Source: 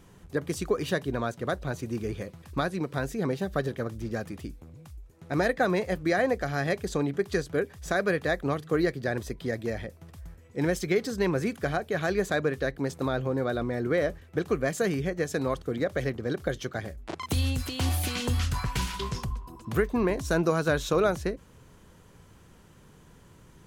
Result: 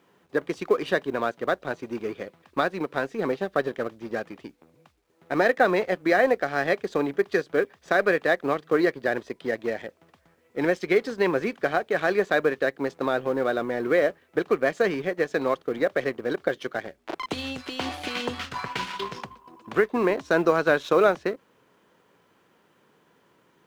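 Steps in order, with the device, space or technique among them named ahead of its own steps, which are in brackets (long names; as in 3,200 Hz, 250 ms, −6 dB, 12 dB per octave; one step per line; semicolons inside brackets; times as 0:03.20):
phone line with mismatched companding (band-pass filter 310–3,500 Hz; mu-law and A-law mismatch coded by A)
level +6.5 dB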